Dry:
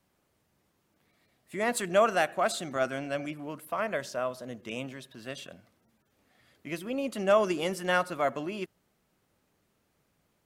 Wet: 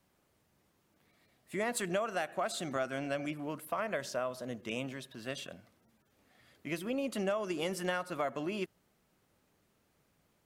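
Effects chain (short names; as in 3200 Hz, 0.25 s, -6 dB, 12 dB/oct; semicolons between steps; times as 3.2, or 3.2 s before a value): compressor 10:1, threshold -30 dBFS, peak gain reduction 13 dB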